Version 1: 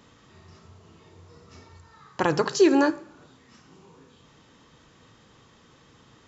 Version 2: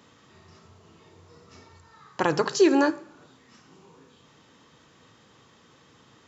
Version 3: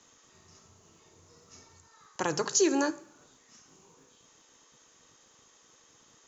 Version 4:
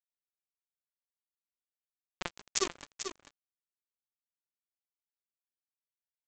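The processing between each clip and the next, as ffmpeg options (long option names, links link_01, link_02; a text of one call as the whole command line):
ffmpeg -i in.wav -af "highpass=72,lowshelf=frequency=170:gain=-4" out.wav
ffmpeg -i in.wav -filter_complex "[0:a]lowpass=frequency=6600:width_type=q:width=7.3,acrossover=split=310|2100[link_01][link_02][link_03];[link_01]aeval=exprs='val(0)*gte(abs(val(0)),0.00119)':channel_layout=same[link_04];[link_04][link_02][link_03]amix=inputs=3:normalize=0,volume=-7dB" out.wav
ffmpeg -i in.wav -af "aresample=16000,acrusher=bits=2:mix=0:aa=0.5,aresample=44100,aecho=1:1:441:0.376" out.wav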